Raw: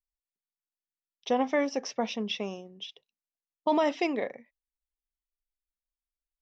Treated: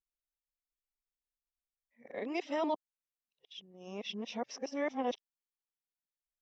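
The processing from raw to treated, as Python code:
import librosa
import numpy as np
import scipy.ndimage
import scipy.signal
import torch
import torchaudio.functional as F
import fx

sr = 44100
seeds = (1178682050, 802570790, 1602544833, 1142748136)

y = np.flip(x).copy()
y = y * librosa.db_to_amplitude(-8.0)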